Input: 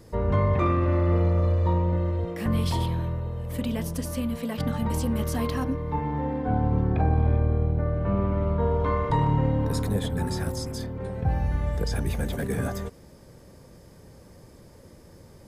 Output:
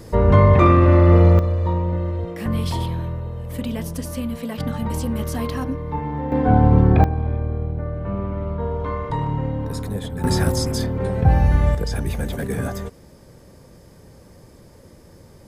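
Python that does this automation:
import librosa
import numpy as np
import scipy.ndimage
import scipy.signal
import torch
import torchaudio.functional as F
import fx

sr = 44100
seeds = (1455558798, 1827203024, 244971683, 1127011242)

y = fx.gain(x, sr, db=fx.steps((0.0, 10.0), (1.39, 2.0), (6.32, 10.0), (7.04, -1.0), (10.24, 10.0), (11.75, 3.0)))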